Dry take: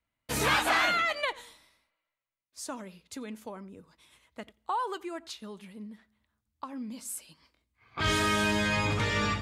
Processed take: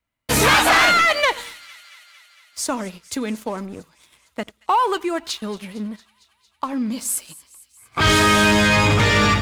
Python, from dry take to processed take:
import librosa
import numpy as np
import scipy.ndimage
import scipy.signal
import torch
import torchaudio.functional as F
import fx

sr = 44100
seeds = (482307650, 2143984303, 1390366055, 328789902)

y = fx.leveller(x, sr, passes=2)
y = fx.echo_wet_highpass(y, sr, ms=228, feedback_pct=69, hz=2300.0, wet_db=-19.5)
y = y * librosa.db_to_amplitude(7.0)